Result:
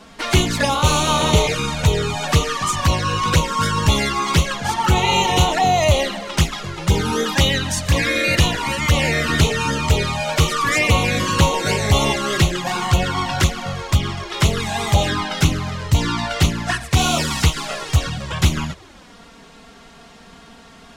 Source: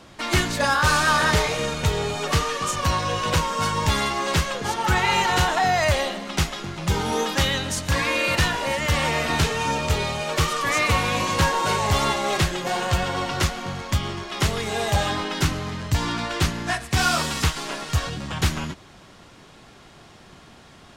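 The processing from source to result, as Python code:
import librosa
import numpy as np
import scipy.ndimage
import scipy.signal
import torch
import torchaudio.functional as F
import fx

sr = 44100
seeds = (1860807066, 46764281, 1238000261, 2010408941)

y = fx.env_flanger(x, sr, rest_ms=4.9, full_db=-17.0)
y = y * librosa.db_to_amplitude(7.0)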